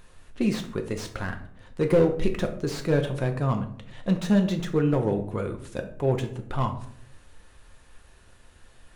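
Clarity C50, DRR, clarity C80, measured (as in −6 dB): 11.0 dB, 5.0 dB, 14.5 dB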